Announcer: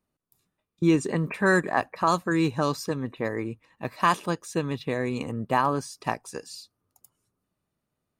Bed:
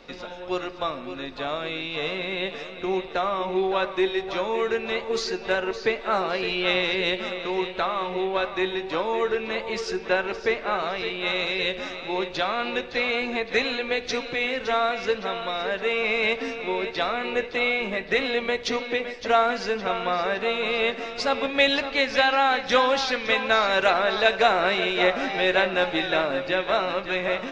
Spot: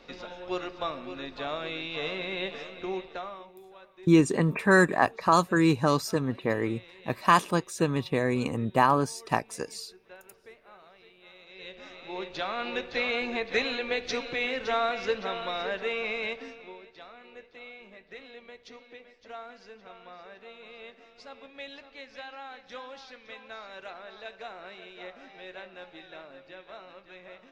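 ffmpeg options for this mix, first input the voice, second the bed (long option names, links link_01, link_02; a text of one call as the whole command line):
ffmpeg -i stem1.wav -i stem2.wav -filter_complex "[0:a]adelay=3250,volume=1.5dB[link_01];[1:a]volume=18.5dB,afade=type=out:start_time=2.65:duration=0.88:silence=0.0749894,afade=type=in:start_time=11.46:duration=1.46:silence=0.0707946,afade=type=out:start_time=15.58:duration=1.24:silence=0.11885[link_02];[link_01][link_02]amix=inputs=2:normalize=0" out.wav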